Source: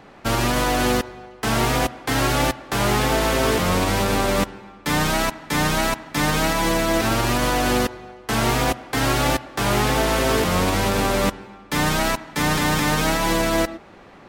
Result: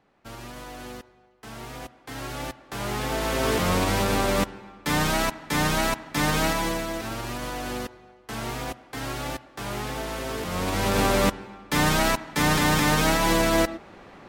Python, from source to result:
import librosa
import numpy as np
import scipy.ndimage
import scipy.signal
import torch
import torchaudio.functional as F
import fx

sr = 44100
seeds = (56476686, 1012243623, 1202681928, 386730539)

y = fx.gain(x, sr, db=fx.line((1.58, -19.5), (2.91, -10.0), (3.62, -3.0), (6.49, -3.0), (6.98, -12.0), (10.38, -12.0), (11.0, -1.0)))